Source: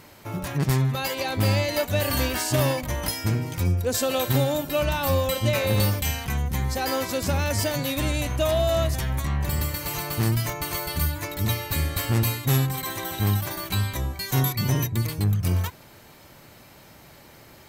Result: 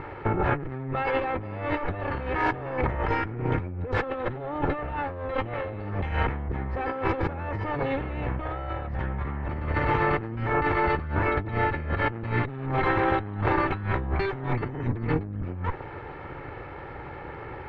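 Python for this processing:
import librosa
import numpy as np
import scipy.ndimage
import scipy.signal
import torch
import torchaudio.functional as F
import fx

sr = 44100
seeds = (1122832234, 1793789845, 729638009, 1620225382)

y = fx.lower_of_two(x, sr, delay_ms=2.3)
y = scipy.signal.sosfilt(scipy.signal.butter(4, 2000.0, 'lowpass', fs=sr, output='sos'), y)
y = fx.over_compress(y, sr, threshold_db=-36.0, ratio=-1.0)
y = y * 10.0 ** (7.0 / 20.0)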